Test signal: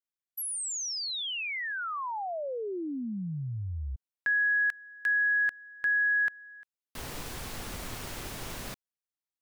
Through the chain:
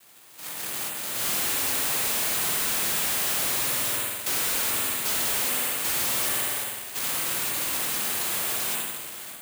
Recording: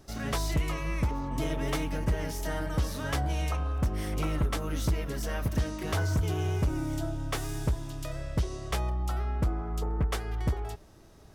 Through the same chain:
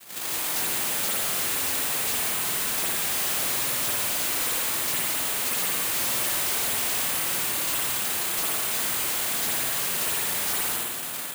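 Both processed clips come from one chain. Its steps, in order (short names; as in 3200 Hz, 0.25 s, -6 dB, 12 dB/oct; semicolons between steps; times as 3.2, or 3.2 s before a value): delta modulation 64 kbps, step -40.5 dBFS; Chebyshev low-pass 3200 Hz, order 4; low shelf 160 Hz +9.5 dB; AGC gain up to 15 dB; in parallel at -7 dB: wrapped overs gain 13.5 dB; on the sum: noise vocoder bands 1; spring tank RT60 1.1 s, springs 51 ms, chirp 35 ms, DRR -1.5 dB; careless resampling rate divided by 4×, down filtered, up zero stuff; maximiser -8 dB; slew limiter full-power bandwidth 810 Hz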